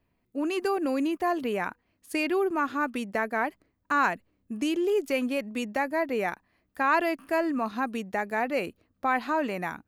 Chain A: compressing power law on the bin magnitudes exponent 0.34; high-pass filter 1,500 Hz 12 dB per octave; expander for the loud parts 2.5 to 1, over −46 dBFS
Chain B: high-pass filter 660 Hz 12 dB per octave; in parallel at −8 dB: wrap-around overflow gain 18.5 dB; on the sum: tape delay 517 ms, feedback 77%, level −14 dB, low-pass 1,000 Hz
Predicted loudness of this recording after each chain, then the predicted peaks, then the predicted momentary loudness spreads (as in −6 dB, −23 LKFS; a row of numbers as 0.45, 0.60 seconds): −35.0, −29.0 LKFS; −11.5, −14.0 dBFS; 14, 10 LU